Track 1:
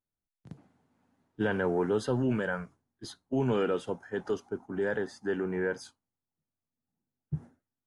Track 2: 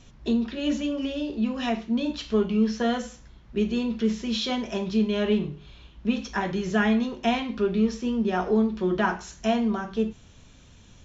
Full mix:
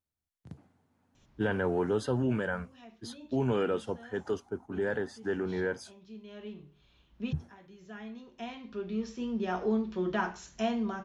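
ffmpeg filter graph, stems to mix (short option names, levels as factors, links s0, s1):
-filter_complex "[0:a]equalizer=f=78:w=2.1:g=13,volume=0.891,asplit=2[s0][s1];[1:a]adelay=1150,volume=0.473[s2];[s1]apad=whole_len=537918[s3];[s2][s3]sidechaincompress=threshold=0.00355:ratio=6:attack=5:release=1240[s4];[s0][s4]amix=inputs=2:normalize=0,lowshelf=f=73:g=-7"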